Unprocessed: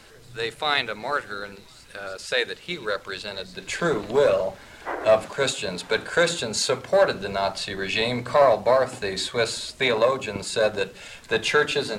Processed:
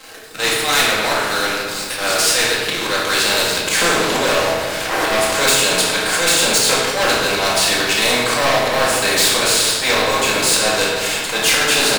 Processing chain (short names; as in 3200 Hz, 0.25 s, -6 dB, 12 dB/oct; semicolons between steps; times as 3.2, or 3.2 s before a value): recorder AGC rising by 5.8 dB/s; HPF 350 Hz 12 dB/oct; high shelf 10000 Hz +5.5 dB; comb 6.3 ms, depth 39%; auto swell 0.117 s; sample leveller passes 3; shoebox room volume 350 m³, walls mixed, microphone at 2.1 m; spectral compressor 2:1; gain -7 dB